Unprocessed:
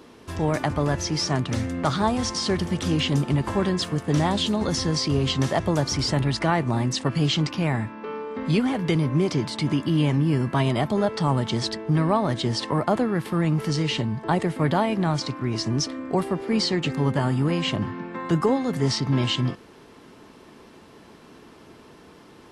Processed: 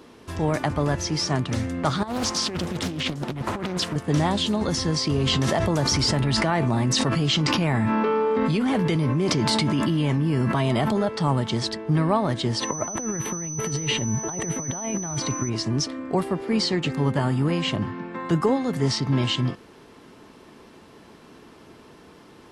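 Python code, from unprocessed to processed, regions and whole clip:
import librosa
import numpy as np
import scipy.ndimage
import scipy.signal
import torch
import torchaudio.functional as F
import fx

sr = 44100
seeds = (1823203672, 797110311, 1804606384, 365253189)

y = fx.chain(x, sr, fx.low_shelf(hz=71.0, db=-10.0),
    fx.over_compress(threshold_db=-26.0, ratio=-0.5),
    fx.doppler_dist(depth_ms=0.7), at=(2.03, 3.96))
y = fx.chain(y, sr, fx.comb_fb(f0_hz=220.0, decay_s=0.22, harmonics='all', damping=0.0, mix_pct=50),
    fx.env_flatten(amount_pct=100), at=(5.07, 11.08))
y = fx.peak_eq(y, sr, hz=5900.0, db=-10.0, octaves=1.0, at=(12.6, 15.48), fade=0.02)
y = fx.over_compress(y, sr, threshold_db=-27.0, ratio=-0.5, at=(12.6, 15.48), fade=0.02)
y = fx.dmg_tone(y, sr, hz=6000.0, level_db=-31.0, at=(12.6, 15.48), fade=0.02)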